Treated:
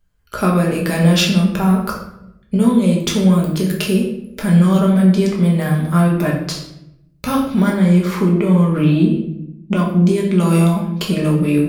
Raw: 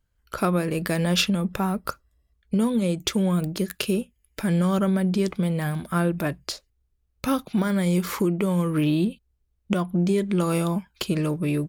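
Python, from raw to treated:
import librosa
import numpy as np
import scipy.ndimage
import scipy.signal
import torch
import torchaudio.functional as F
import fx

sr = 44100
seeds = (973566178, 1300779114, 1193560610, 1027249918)

y = fx.high_shelf(x, sr, hz=5300.0, db=-11.5, at=(7.7, 9.77))
y = fx.room_shoebox(y, sr, seeds[0], volume_m3=210.0, walls='mixed', distance_m=1.3)
y = y * 10.0 ** (3.0 / 20.0)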